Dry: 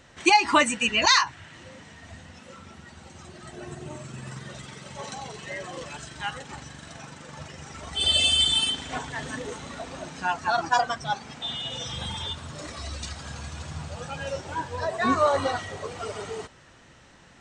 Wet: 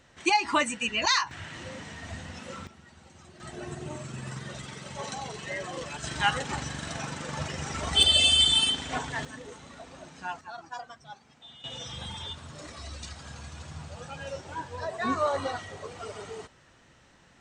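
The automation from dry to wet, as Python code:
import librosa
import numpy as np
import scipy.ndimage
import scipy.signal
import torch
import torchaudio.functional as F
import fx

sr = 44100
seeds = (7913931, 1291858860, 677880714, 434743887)

y = fx.gain(x, sr, db=fx.steps((0.0, -5.5), (1.31, 5.0), (2.67, -7.0), (3.4, 0.5), (6.04, 7.0), (8.03, 0.5), (9.25, -9.0), (10.41, -17.5), (11.64, -5.5)))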